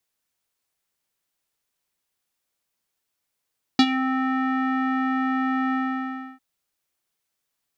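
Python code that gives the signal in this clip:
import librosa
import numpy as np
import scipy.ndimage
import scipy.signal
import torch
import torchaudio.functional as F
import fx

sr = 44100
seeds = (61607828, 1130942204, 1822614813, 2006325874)

y = fx.sub_voice(sr, note=60, wave='square', cutoff_hz=1600.0, q=3.8, env_oct=1.5, env_s=0.19, attack_ms=3.1, decay_s=0.06, sustain_db=-12.0, release_s=0.66, note_s=1.94, slope=12)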